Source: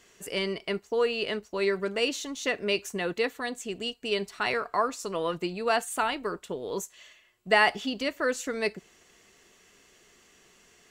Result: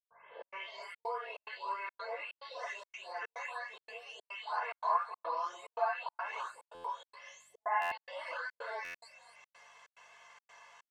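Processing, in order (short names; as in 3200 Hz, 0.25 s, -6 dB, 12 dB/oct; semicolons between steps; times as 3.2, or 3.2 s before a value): spectral delay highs late, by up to 0.598 s; tilt +4.5 dB/oct; on a send: frequency-shifting echo 0.25 s, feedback 32%, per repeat +41 Hz, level -17.5 dB; on the sum: compressor 3:1, threshold -43 dBFS, peak gain reduction 19 dB; non-linear reverb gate 0.1 s rising, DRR -7.5 dB; hum 50 Hz, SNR 13 dB; ladder band-pass 910 Hz, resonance 75%; comb 1.9 ms, depth 79%; step gate ".xxx.xxxx" 143 bpm -60 dB; stuck buffer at 6.74/7.81/8.84, samples 512, times 8; gain +7 dB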